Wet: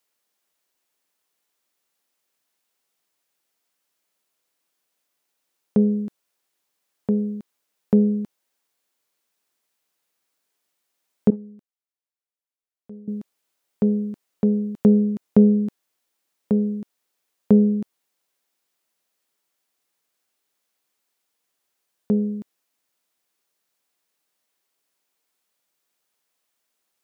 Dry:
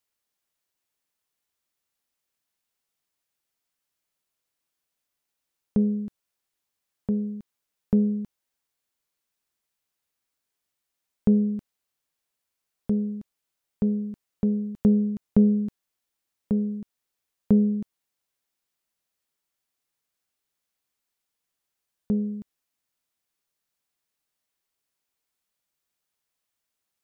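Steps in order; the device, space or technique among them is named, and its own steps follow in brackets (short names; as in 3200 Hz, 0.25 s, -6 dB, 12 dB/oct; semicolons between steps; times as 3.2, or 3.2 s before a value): 11.3–13.08 gate -16 dBFS, range -20 dB; filter by subtraction (in parallel: LPF 380 Hz 12 dB/oct + phase invert); on the sum: gain +6 dB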